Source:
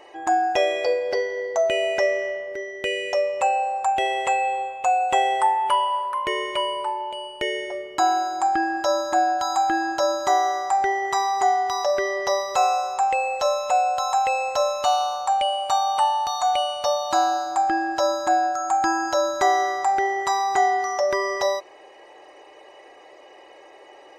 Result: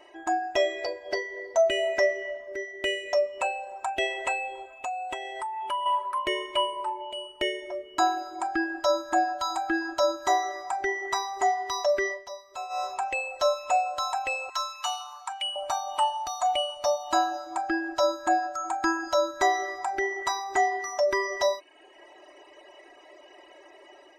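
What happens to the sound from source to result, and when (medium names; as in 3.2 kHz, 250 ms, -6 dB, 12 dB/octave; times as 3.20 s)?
4.68–5.86 s: compression 5:1, threshold -26 dBFS
12.12–12.83 s: dip -13.5 dB, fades 0.14 s
14.49–15.56 s: steep high-pass 880 Hz
whole clip: reverb removal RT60 0.67 s; comb 3.1 ms, depth 71%; level rider gain up to 3.5 dB; trim -7.5 dB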